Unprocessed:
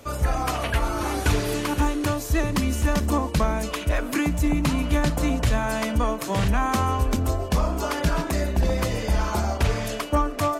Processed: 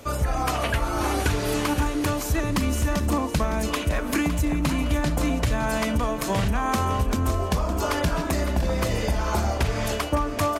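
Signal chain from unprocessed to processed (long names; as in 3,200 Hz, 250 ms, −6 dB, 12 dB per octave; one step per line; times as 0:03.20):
downward compressor, threshold −22 dBFS, peak gain reduction 6.5 dB
on a send: repeating echo 561 ms, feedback 36%, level −11 dB
on the sum: level +2.5 dB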